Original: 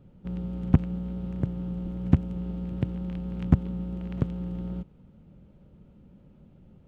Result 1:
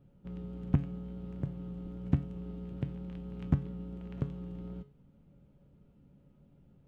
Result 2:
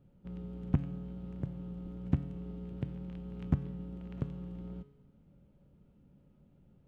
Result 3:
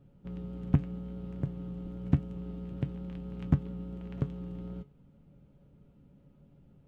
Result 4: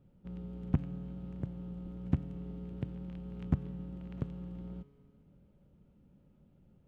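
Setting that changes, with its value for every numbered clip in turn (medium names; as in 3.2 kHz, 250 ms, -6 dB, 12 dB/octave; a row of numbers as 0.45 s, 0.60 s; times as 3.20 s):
feedback comb, decay: 0.37 s, 0.96 s, 0.15 s, 2.2 s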